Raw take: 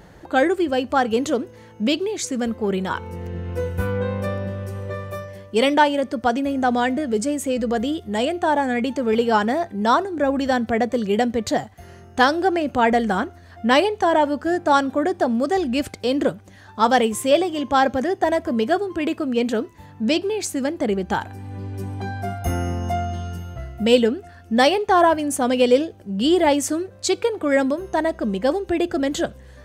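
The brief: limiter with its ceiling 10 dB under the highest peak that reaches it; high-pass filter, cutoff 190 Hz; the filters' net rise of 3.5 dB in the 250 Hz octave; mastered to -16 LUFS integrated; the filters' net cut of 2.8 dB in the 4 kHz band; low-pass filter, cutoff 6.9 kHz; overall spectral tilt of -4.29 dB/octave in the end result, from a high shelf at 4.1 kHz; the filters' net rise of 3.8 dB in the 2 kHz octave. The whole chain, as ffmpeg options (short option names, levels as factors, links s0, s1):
-af "highpass=190,lowpass=6900,equalizer=f=250:t=o:g=5.5,equalizer=f=2000:t=o:g=6.5,equalizer=f=4000:t=o:g=-5.5,highshelf=f=4100:g=-3,volume=1.88,alimiter=limit=0.501:level=0:latency=1"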